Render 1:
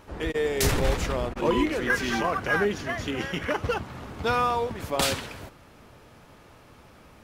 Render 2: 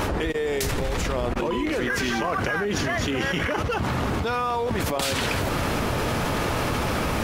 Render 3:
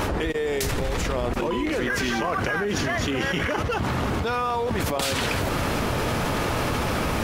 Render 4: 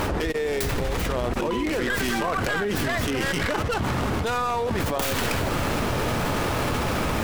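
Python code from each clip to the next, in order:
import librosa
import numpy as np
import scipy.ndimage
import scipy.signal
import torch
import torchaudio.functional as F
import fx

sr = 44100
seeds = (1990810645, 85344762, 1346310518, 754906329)

y1 = fx.env_flatten(x, sr, amount_pct=100)
y1 = y1 * 10.0 ** (-5.5 / 20.0)
y2 = y1 + 10.0 ** (-19.0 / 20.0) * np.pad(y1, (int(729 * sr / 1000.0), 0))[:len(y1)]
y3 = fx.tracing_dist(y2, sr, depth_ms=0.27)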